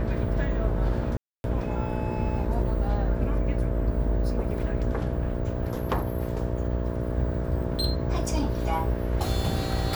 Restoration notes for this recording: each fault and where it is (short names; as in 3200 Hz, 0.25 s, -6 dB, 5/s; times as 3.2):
buzz 60 Hz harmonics 11 -31 dBFS
1.17–1.44 gap 0.271 s
4.98–6.05 clipped -20 dBFS